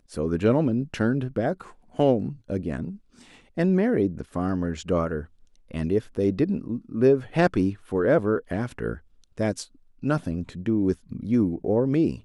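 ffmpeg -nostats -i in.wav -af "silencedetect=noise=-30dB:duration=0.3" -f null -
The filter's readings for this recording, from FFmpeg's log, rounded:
silence_start: 1.61
silence_end: 1.99 | silence_duration: 0.38
silence_start: 2.91
silence_end: 3.58 | silence_duration: 0.67
silence_start: 5.21
silence_end: 5.74 | silence_duration: 0.53
silence_start: 8.95
silence_end: 9.39 | silence_duration: 0.45
silence_start: 9.62
silence_end: 10.04 | silence_duration: 0.41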